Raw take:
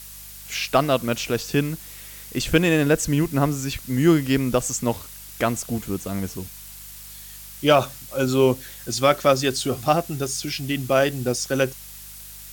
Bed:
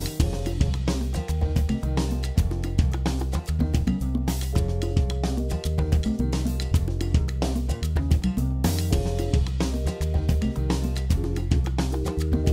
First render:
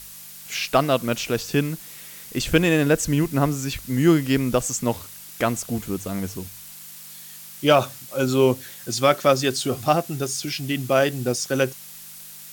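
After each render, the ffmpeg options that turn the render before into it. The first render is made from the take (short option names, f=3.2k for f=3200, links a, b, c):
-af "bandreject=f=50:t=h:w=4,bandreject=f=100:t=h:w=4"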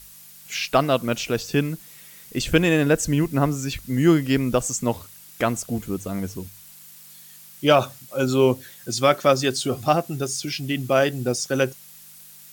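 -af "afftdn=nr=6:nf=-41"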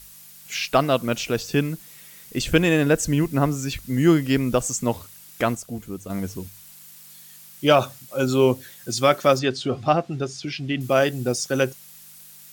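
-filter_complex "[0:a]asettb=1/sr,asplit=3[a][b][c];[a]atrim=end=9.394[d];[b]atrim=start=9.39:end=10.81,asetpts=PTS-STARTPTS,afade=t=in:d=0.004:c=qsin,afade=t=out:st=1.416:d=0.004:c=qsin,lowpass=3.9k[e];[c]atrim=start=10.806[f];[d][e]acrossfade=d=0.004:c1=hsin:c2=qsin[g];[g][f]acrossfade=d=0.004:c1=qsin:c2=hsin,asplit=3[h][i][j];[h]atrim=end=5.552[k];[i]atrim=start=5.548:end=6.102,asetpts=PTS-STARTPTS,volume=-5.5dB[l];[j]atrim=start=6.098[m];[k][l]acrossfade=d=0.004:c1=hsin:c2=hsin[n];[n][m]acrossfade=d=0.004:c1=hsin:c2=hsin"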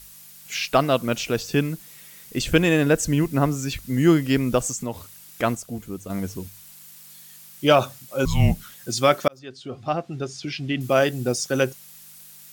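-filter_complex "[0:a]asplit=3[a][b][c];[a]afade=t=out:st=4.71:d=0.02[d];[b]acompressor=threshold=-28dB:ratio=2:attack=3.2:release=140:knee=1:detection=peak,afade=t=in:st=4.71:d=0.02,afade=t=out:st=5.42:d=0.02[e];[c]afade=t=in:st=5.42:d=0.02[f];[d][e][f]amix=inputs=3:normalize=0,asettb=1/sr,asplit=3[g][h][i];[g]atrim=end=8.254[j];[h]atrim=start=8.25:end=8.74,asetpts=PTS-STARTPTS,afade=t=in:d=0.004:c=qsin,afade=t=out:st=0.486:d=0.004:c=qsin,afreqshift=-290[k];[i]atrim=start=8.736[l];[j][k]acrossfade=d=0.004:c1=hsin:c2=qsin[m];[m][l]acrossfade=d=0.004:c1=qsin:c2=hsin,asplit=2[n][o];[n]atrim=end=9.28,asetpts=PTS-STARTPTS,afade=t=out:st=9.276:d=0.004:c=hsin[p];[o]atrim=start=9.28,asetpts=PTS-STARTPTS,afade=t=in:d=1.25[q];[p][q]concat=n=2:v=0:a=1"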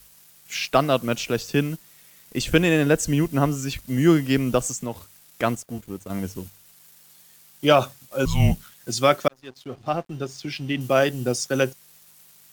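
-filter_complex "[0:a]acrossover=split=160[a][b];[a]acrusher=samples=15:mix=1:aa=0.000001[c];[c][b]amix=inputs=2:normalize=0,aeval=exprs='sgn(val(0))*max(abs(val(0))-0.00422,0)':c=same"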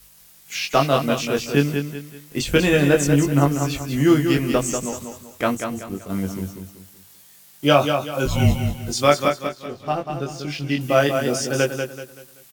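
-filter_complex "[0:a]asplit=2[a][b];[b]adelay=21,volume=-3.5dB[c];[a][c]amix=inputs=2:normalize=0,aecho=1:1:191|382|573|764:0.473|0.166|0.058|0.0203"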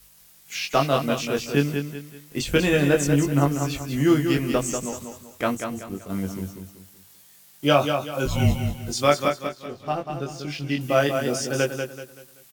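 -af "volume=-3dB"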